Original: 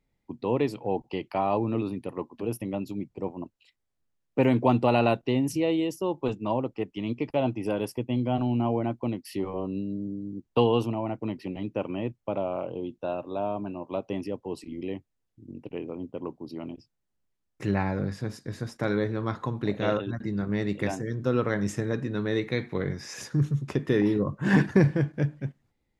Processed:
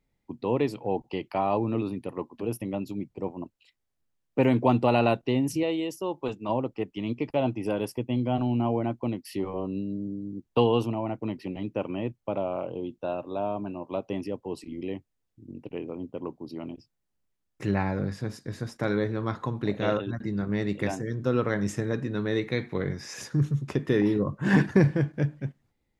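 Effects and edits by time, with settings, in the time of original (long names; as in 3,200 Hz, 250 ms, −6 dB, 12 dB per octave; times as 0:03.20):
0:05.63–0:06.49: low-shelf EQ 340 Hz −6.5 dB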